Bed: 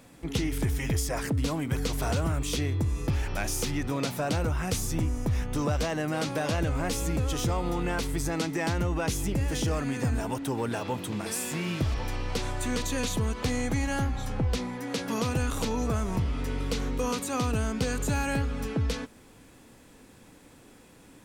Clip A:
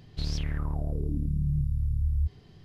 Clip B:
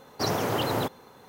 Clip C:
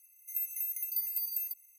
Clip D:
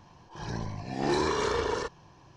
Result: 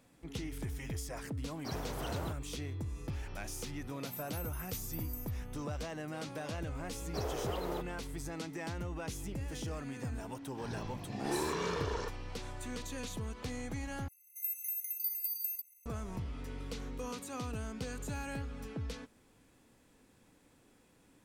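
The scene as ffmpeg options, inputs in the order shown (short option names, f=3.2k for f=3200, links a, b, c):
-filter_complex "[2:a]asplit=2[a][b];[3:a]asplit=2[c][d];[0:a]volume=-12dB[e];[c]equalizer=f=9.6k:w=0.87:g=8.5[f];[b]highpass=f=400:t=q:w=2.4[g];[e]asplit=2[h][i];[h]atrim=end=14.084[j];[d]atrim=end=1.78,asetpts=PTS-STARTPTS,volume=-2.5dB[k];[i]atrim=start=15.856[l];[a]atrim=end=1.28,asetpts=PTS-STARTPTS,volume=-15.5dB,afade=t=in:d=0.004:c=hsin,afade=t=out:st=1.276:d=0.004:c=hsin,adelay=1450[m];[f]atrim=end=1.78,asetpts=PTS-STARTPTS,volume=-16.5dB,afade=t=in:d=0.004:c=hsin,afade=t=out:st=1.776:d=0.004:c=hsin,adelay=166257S[n];[g]atrim=end=1.28,asetpts=PTS-STARTPTS,volume=-15.5dB,afade=t=in:d=0.004:c=hsin,afade=t=out:st=1.276:d=0.004:c=hsin,adelay=6940[o];[4:a]atrim=end=2.36,asetpts=PTS-STARTPTS,volume=-8dB,afade=t=in:d=0.004:c=hsin,afade=t=out:st=2.356:d=0.004:c=hsin,adelay=10220[p];[j][k]acrossfade=d=0.004:c1=hsin:c2=hsin[q];[q][l]acrossfade=d=0.004:c1=hsin:c2=hsin[r];[r][m][n][o][p]amix=inputs=5:normalize=0"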